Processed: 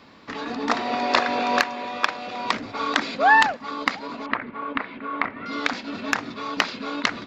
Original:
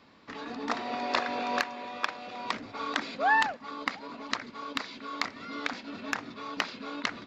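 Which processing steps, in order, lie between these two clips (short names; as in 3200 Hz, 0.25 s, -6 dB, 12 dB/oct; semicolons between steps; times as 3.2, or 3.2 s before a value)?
4.26–5.46 LPF 2400 Hz 24 dB/oct; gain +8.5 dB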